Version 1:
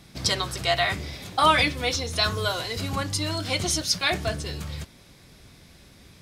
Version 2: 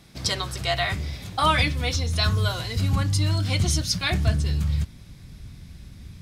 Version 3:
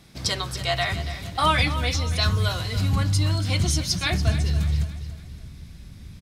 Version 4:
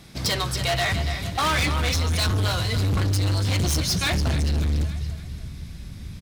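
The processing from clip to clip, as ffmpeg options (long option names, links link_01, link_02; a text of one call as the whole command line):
ffmpeg -i in.wav -af "asubboost=boost=6:cutoff=190,volume=-1.5dB" out.wav
ffmpeg -i in.wav -af "aecho=1:1:284|568|852|1136:0.237|0.107|0.048|0.0216" out.wav
ffmpeg -i in.wav -af "volume=25dB,asoftclip=hard,volume=-25dB,volume=5dB" out.wav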